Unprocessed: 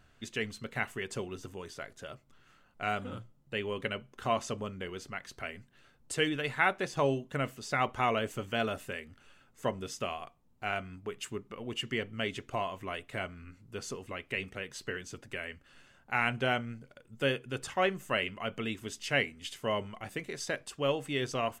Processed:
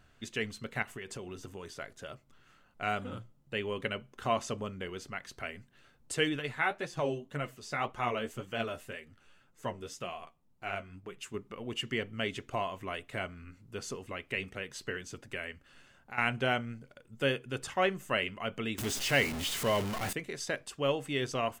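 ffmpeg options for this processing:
-filter_complex "[0:a]asettb=1/sr,asplit=3[s0][s1][s2];[s0]atrim=end=0.824[s3];[s1]atrim=start=0.82:end=1.65,asetpts=PTS-STARTPTS,afade=t=in:d=0.004:c=qsin,afade=t=out:st=0.826:d=0.004:c=qsin,acompressor=threshold=0.0126:ratio=5:attack=3.2:release=140:knee=1:detection=peak[s4];[s2]atrim=start=1.646[s5];[s3][s4]acrossfade=d=0.004:c1=hsin:c2=qsin[s6];[s6][s5]acrossfade=d=0.004:c1=qsin:c2=hsin,asettb=1/sr,asplit=3[s7][s8][s9];[s7]atrim=end=6.394[s10];[s8]atrim=start=6.39:end=11.34,asetpts=PTS-STARTPTS,afade=t=in:d=0.004:c=qsin,afade=t=out:st=4.946:d=0.004:c=qsin,flanger=delay=5.6:depth=7.9:regen=32:speed=1.9:shape=sinusoidal[s11];[s9]atrim=start=11.336[s12];[s10][s11]acrossfade=d=0.004:c1=hsin:c2=qsin[s13];[s13][s12]acrossfade=d=0.004:c1=qsin:c2=hsin,asettb=1/sr,asplit=3[s14][s15][s16];[s14]atrim=end=15.514[s17];[s15]atrim=start=15.51:end=16.18,asetpts=PTS-STARTPTS,afade=t=in:d=0.004:c=qsin,afade=t=out:st=0.666:d=0.004:c=qsin,acompressor=threshold=0.00447:ratio=2:attack=3.2:release=140:knee=1:detection=peak[s18];[s16]atrim=start=16.176[s19];[s17][s18]acrossfade=d=0.004:c1=hsin:c2=qsin[s20];[s20][s19]acrossfade=d=0.004:c1=qsin:c2=hsin,asettb=1/sr,asplit=3[s21][s22][s23];[s21]atrim=end=18.784[s24];[s22]atrim=start=18.78:end=20.13,asetpts=PTS-STARTPTS,afade=t=in:d=0.004:c=qsin,afade=t=out:st=1.346:d=0.004:c=qsin,aeval=exprs='val(0)+0.5*0.0266*sgn(val(0))':c=same[s25];[s23]atrim=start=20.126[s26];[s24][s25]acrossfade=d=0.004:c1=hsin:c2=qsin[s27];[s27][s26]acrossfade=d=0.004:c1=qsin:c2=hsin"

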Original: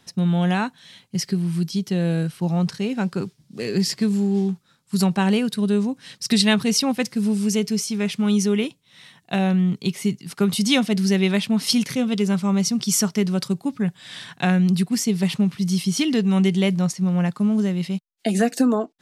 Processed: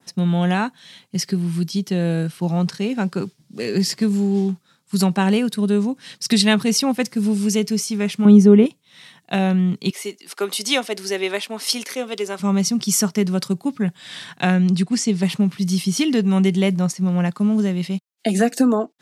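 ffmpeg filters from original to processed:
-filter_complex "[0:a]asettb=1/sr,asplit=3[s0][s1][s2];[s0]atrim=end=8.254[s3];[s1]atrim=start=8.25:end=8.66,asetpts=PTS-STARTPTS,afade=t=in:d=0.004:c=qsin,afade=t=out:st=0.406:d=0.004:c=qsin,tiltshelf=f=1400:g=9[s4];[s2]atrim=start=8.656[s5];[s3][s4]acrossfade=d=0.004:c1=hsin:c2=qsin[s6];[s6][s5]acrossfade=d=0.004:c1=qsin:c2=hsin,asettb=1/sr,asplit=3[s7][s8][s9];[s7]atrim=end=9.904[s10];[s8]atrim=start=9.9:end=12.4,asetpts=PTS-STARTPTS,afade=t=in:d=0.004:c=qsin,afade=t=out:st=2.496:d=0.004:c=qsin,highpass=f=350:w=0.5412,highpass=f=350:w=1.3066[s11];[s9]atrim=start=12.396[s12];[s10][s11]acrossfade=d=0.004:c1=hsin:c2=qsin[s13];[s13][s12]acrossfade=d=0.004:c1=qsin:c2=hsin,asettb=1/sr,asplit=3[s14][s15][s16];[s14]atrim=end=14.544[s17];[s15]atrim=start=14.54:end=15.22,asetpts=PTS-STARTPTS,afade=t=in:d=0.004:c=qsin,afade=t=out:st=0.676:d=0.004:c=qsin,lowpass=f=9000:w=0.5412,lowpass=f=9000:w=1.3066[s18];[s16]atrim=start=15.216[s19];[s17][s18]acrossfade=d=0.004:c1=hsin:c2=qsin[s20];[s20][s19]acrossfade=d=0.004:c1=qsin:c2=hsin,highpass=140,adynamicequalizer=threshold=0.0112:dfrequency=3600:dqfactor=0.95:tfrequency=3600:tqfactor=0.95:attack=5:release=100:ratio=0.375:range=2:mode=cutabove:tftype=bell,volume=1.33"

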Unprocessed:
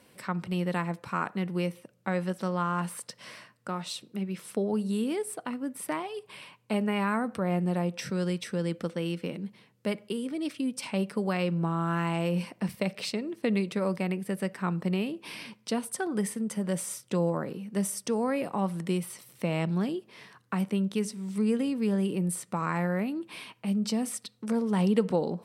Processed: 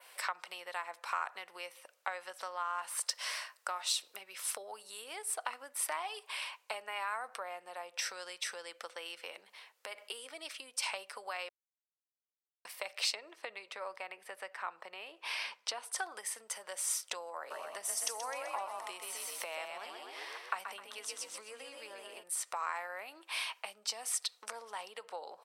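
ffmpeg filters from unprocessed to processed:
-filter_complex "[0:a]asettb=1/sr,asplit=3[s0][s1][s2];[s0]atrim=end=3.064[s3];[s1]atrim=start=3.06:end=5.04,asetpts=PTS-STARTPTS,afade=t=in:d=0.004:c=qsin,afade=t=out:st=1.976:d=0.004:c=qsin,highshelf=f=8500:g=6[s4];[s2]atrim=start=5.036[s5];[s3][s4]acrossfade=d=0.004:c1=hsin:c2=qsin[s6];[s6][s5]acrossfade=d=0.004:c1=qsin:c2=hsin,asettb=1/sr,asplit=3[s7][s8][s9];[s7]atrim=end=9.404[s10];[s8]atrim=start=9.4:end=10.09,asetpts=PTS-STARTPTS,afade=t=in:d=0.004:c=qsin,afade=t=out:st=0.686:d=0.004:c=qsin,acompressor=threshold=0.0158:ratio=6:attack=3.2:release=140:knee=1:detection=peak[s11];[s9]atrim=start=10.086[s12];[s10][s11]acrossfade=d=0.004:c1=hsin:c2=qsin[s13];[s13][s12]acrossfade=d=0.004:c1=qsin:c2=hsin,asettb=1/sr,asplit=3[s14][s15][s16];[s14]atrim=end=13.154[s17];[s15]atrim=start=13.15:end=15.96,asetpts=PTS-STARTPTS,afade=t=in:d=0.004:c=qsin,afade=t=out:st=2.806:d=0.004:c=qsin,lowpass=f=3200:p=1[s18];[s16]atrim=start=15.956[s19];[s17][s18]acrossfade=d=0.004:c1=hsin:c2=qsin[s20];[s20][s19]acrossfade=d=0.004:c1=qsin:c2=hsin,asplit=3[s21][s22][s23];[s21]afade=t=out:st=17.5:d=0.02[s24];[s22]asplit=7[s25][s26][s27][s28][s29][s30][s31];[s26]adelay=128,afreqshift=34,volume=0.562[s32];[s27]adelay=256,afreqshift=68,volume=0.282[s33];[s28]adelay=384,afreqshift=102,volume=0.141[s34];[s29]adelay=512,afreqshift=136,volume=0.07[s35];[s30]adelay=640,afreqshift=170,volume=0.0351[s36];[s31]adelay=768,afreqshift=204,volume=0.0176[s37];[s25][s32][s33][s34][s35][s36][s37]amix=inputs=7:normalize=0,afade=t=in:st=17.5:d=0.02,afade=t=out:st=22.22:d=0.02[s38];[s23]afade=t=in:st=22.22:d=0.02[s39];[s24][s38][s39]amix=inputs=3:normalize=0,asplit=3[s40][s41][s42];[s40]atrim=end=11.49,asetpts=PTS-STARTPTS,afade=t=out:st=11.486:d=0.004:c=hsin[s43];[s41]atrim=start=11.49:end=12.65,asetpts=PTS-STARTPTS,volume=0[s44];[s42]atrim=start=12.65,asetpts=PTS-STARTPTS,afade=t=in:d=0.004:c=hsin[s45];[s43][s44][s45]concat=n=3:v=0:a=1,acompressor=threshold=0.0141:ratio=5,highpass=f=690:w=0.5412,highpass=f=690:w=1.3066,adynamicequalizer=threshold=0.00178:dfrequency=5900:dqfactor=1.1:tfrequency=5900:tqfactor=1.1:attack=5:release=100:ratio=0.375:range=2:mode=boostabove:tftype=bell,volume=2"

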